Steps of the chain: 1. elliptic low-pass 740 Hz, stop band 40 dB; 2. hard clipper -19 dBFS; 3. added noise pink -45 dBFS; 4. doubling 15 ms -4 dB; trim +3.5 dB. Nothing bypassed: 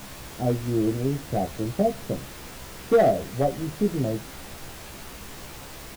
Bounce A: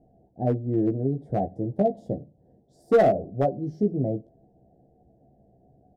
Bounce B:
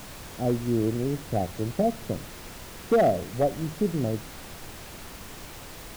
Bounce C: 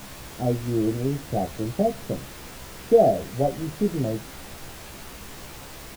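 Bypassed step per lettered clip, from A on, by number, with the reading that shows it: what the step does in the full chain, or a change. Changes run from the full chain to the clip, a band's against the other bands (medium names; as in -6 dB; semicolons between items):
3, 2 kHz band -4.0 dB; 4, crest factor change -2.5 dB; 2, distortion -16 dB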